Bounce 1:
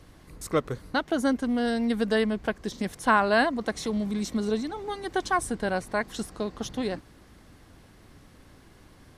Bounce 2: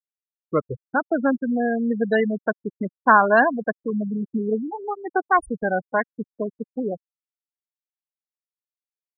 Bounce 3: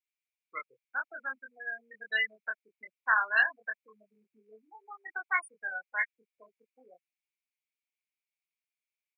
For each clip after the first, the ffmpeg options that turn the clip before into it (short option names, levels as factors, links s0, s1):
-filter_complex "[0:a]afftfilt=real='re*gte(hypot(re,im),0.112)':imag='im*gte(hypot(re,im),0.112)':win_size=1024:overlap=0.75,acrossover=split=610|2100[s0][s1][s2];[s1]dynaudnorm=f=160:g=11:m=1.88[s3];[s0][s3][s2]amix=inputs=3:normalize=0,volume=1.41"
-filter_complex "[0:a]highpass=f=2300:t=q:w=8.4,asplit=2[s0][s1];[s1]adelay=23,volume=0.668[s2];[s0][s2]amix=inputs=2:normalize=0,volume=0.531"